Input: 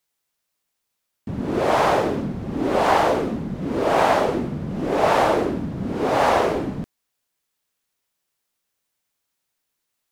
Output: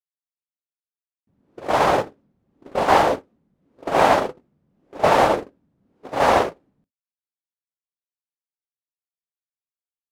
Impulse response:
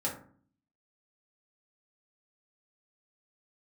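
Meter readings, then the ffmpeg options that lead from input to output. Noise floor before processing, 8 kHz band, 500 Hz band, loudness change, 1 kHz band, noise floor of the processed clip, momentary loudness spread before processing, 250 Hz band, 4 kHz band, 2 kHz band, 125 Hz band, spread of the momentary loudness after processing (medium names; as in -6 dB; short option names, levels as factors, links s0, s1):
-78 dBFS, +0.5 dB, -1.0 dB, +1.5 dB, +1.0 dB, under -85 dBFS, 10 LU, -6.0 dB, +0.5 dB, +0.5 dB, -6.5 dB, 14 LU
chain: -filter_complex "[0:a]agate=range=0.00794:threshold=0.141:ratio=16:detection=peak,asplit=2[s0][s1];[1:a]atrim=start_sample=2205,atrim=end_sample=3087[s2];[s1][s2]afir=irnorm=-1:irlink=0,volume=0.0891[s3];[s0][s3]amix=inputs=2:normalize=0,volume=1.33"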